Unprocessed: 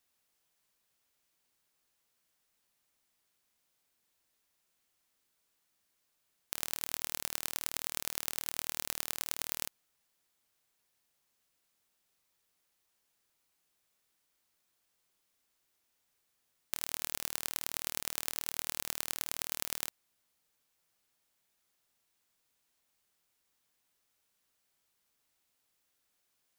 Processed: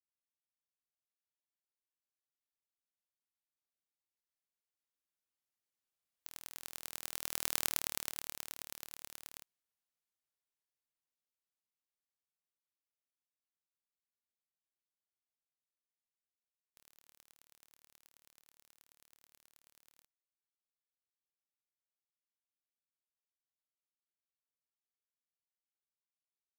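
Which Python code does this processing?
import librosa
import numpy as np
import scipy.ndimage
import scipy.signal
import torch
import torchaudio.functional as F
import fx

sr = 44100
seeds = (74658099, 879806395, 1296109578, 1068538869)

y = fx.doppler_pass(x, sr, speed_mps=14, closest_m=3.1, pass_at_s=7.62)
y = y * 10.0 ** (3.5 / 20.0)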